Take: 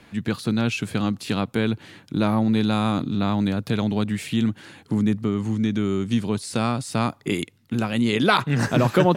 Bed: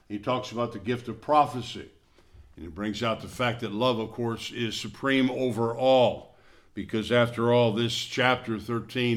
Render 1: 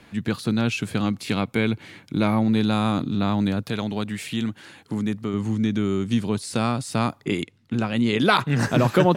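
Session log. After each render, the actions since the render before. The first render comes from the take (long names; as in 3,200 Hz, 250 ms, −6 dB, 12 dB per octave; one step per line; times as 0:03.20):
0:01.05–0:02.47: hollow resonant body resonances 2,200 Hz, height 12 dB, ringing for 25 ms
0:03.63–0:05.34: low-shelf EQ 390 Hz −6 dB
0:07.24–0:08.19: high-frequency loss of the air 53 metres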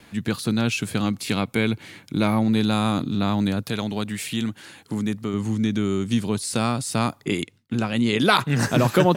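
noise gate with hold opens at −50 dBFS
high-shelf EQ 5,700 Hz +8.5 dB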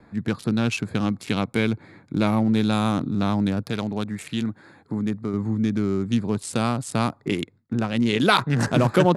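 adaptive Wiener filter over 15 samples
Butterworth low-pass 12,000 Hz 96 dB per octave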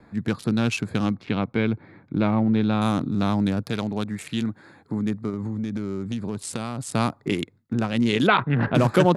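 0:01.14–0:02.82: high-frequency loss of the air 260 metres
0:05.29–0:06.81: downward compressor, threshold −24 dBFS
0:08.27–0:08.75: inverse Chebyshev low-pass filter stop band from 6,000 Hz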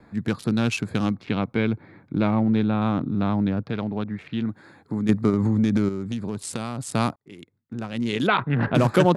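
0:02.63–0:04.49: high-frequency loss of the air 300 metres
0:05.09–0:05.89: clip gain +8 dB
0:07.16–0:08.67: fade in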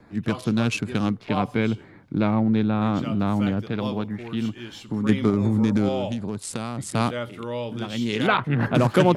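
mix in bed −8.5 dB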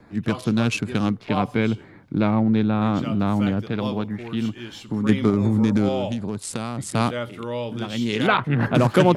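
level +1.5 dB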